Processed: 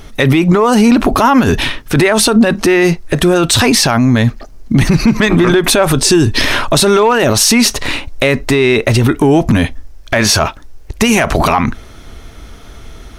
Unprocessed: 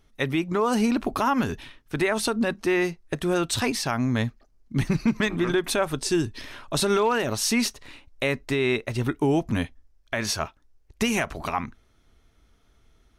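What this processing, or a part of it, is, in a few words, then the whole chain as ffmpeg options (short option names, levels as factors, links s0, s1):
mastering chain: -af "equalizer=f=630:t=o:w=0.77:g=1.5,acompressor=threshold=0.0501:ratio=2.5,asoftclip=type=tanh:threshold=0.15,alimiter=level_in=26.6:limit=0.891:release=50:level=0:latency=1,volume=0.891"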